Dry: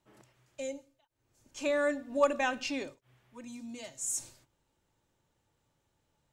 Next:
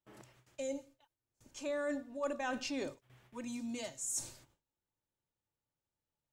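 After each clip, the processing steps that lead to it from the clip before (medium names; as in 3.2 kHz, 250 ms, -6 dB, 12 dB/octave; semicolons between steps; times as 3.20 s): gate with hold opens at -57 dBFS; dynamic bell 2.5 kHz, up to -5 dB, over -51 dBFS, Q 1.5; reverse; compression 5:1, threshold -39 dBFS, peak gain reduction 17 dB; reverse; trim +3.5 dB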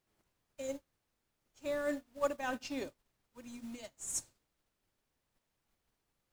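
added noise pink -55 dBFS; upward expansion 2.5:1, over -55 dBFS; trim +6 dB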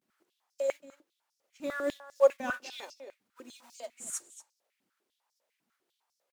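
echo from a far wall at 41 m, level -12 dB; vibrato 0.33 Hz 57 cents; step-sequenced high-pass 10 Hz 220–5400 Hz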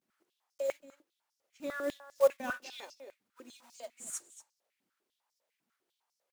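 block-companded coder 5-bit; trim -3 dB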